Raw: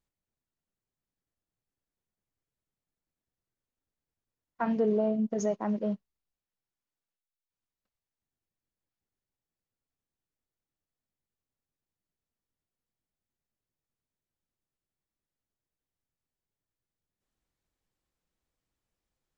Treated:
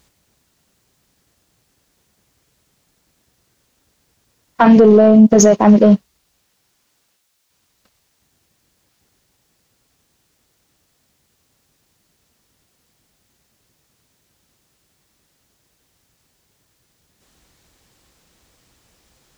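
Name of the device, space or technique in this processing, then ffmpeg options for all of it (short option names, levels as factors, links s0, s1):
mastering chain: -af "highpass=41,equalizer=f=5300:t=o:w=1.8:g=4,acompressor=threshold=0.0355:ratio=2.5,asoftclip=type=tanh:threshold=0.0668,alimiter=level_in=28.2:limit=0.891:release=50:level=0:latency=1,volume=0.891"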